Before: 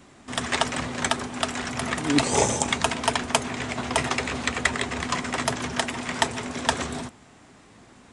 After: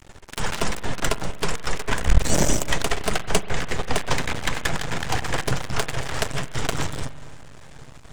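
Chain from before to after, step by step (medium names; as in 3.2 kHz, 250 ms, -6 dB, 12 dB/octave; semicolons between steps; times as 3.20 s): dynamic bell 250 Hz, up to +3 dB, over -41 dBFS, Q 4.9; in parallel at -2 dB: compression, threshold -38 dBFS, peak gain reduction 21.5 dB; on the sum: saturation -13 dBFS, distortion -14 dB; high-pass sweep 260 Hz -> 110 Hz, 3.85–4.77 s; frequency shift -250 Hz; half-wave rectifier; on a send at -14 dB: reverberation RT60 1.8 s, pre-delay 41 ms; on the sum: trim +4 dB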